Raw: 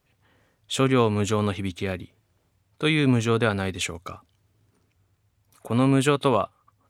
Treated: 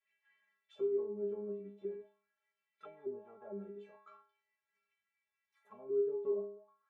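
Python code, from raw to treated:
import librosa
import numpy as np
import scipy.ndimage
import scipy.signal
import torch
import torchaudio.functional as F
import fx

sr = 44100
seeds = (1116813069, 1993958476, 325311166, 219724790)

y = fx.law_mismatch(x, sr, coded='mu')
y = fx.env_lowpass_down(y, sr, base_hz=870.0, full_db=-17.0)
y = fx.stiff_resonator(y, sr, f0_hz=200.0, decay_s=0.66, stiffness=0.008)
y = fx.auto_wah(y, sr, base_hz=380.0, top_hz=2100.0, q=3.7, full_db=-39.0, direction='down')
y = y * 10.0 ** (4.0 / 20.0)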